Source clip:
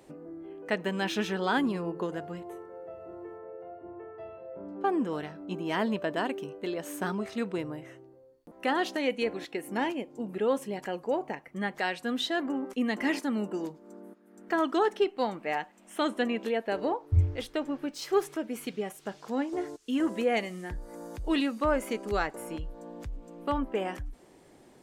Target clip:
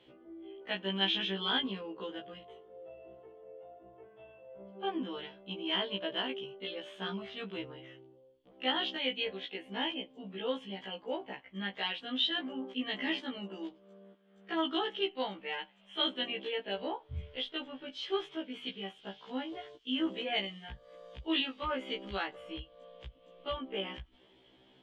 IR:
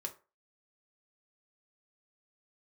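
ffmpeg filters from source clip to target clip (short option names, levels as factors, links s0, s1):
-filter_complex "[0:a]lowpass=f=3200:t=q:w=10,asettb=1/sr,asplit=3[s0][s1][s2];[s0]atrim=end=4.034[s3];[s1]atrim=start=4.03:end=4.61,asetpts=PTS-STARTPTS,afade=t=in:d=0.004:c=qsin,afade=t=out:st=0.576:d=0.004:c=qsin,tremolo=f=230:d=0.571[s4];[s2]atrim=start=4.606[s5];[s3][s4]acrossfade=d=0.004:c1=hsin:c2=qsin[s6];[s6][s5]acrossfade=d=0.004:c1=qsin:c2=hsin,afftfilt=real='re*1.73*eq(mod(b,3),0)':imag='im*1.73*eq(mod(b,3),0)':win_size=2048:overlap=0.75,volume=0.501"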